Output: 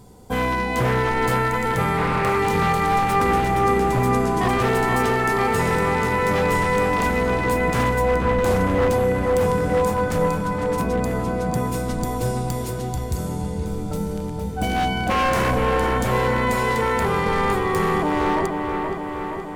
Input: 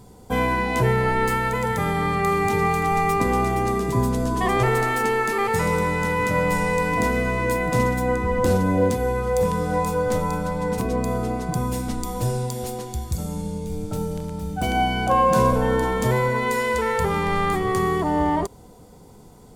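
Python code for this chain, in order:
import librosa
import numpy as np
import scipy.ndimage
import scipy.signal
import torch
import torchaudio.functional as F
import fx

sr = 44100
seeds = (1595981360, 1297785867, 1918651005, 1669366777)

p1 = 10.0 ** (-15.5 / 20.0) * (np.abs((x / 10.0 ** (-15.5 / 20.0) + 3.0) % 4.0 - 2.0) - 1.0)
p2 = p1 + fx.echo_wet_lowpass(p1, sr, ms=473, feedback_pct=66, hz=2800.0, wet_db=-4.5, dry=0)
y = fx.doppler_dist(p2, sr, depth_ms=0.26, at=(1.97, 2.39))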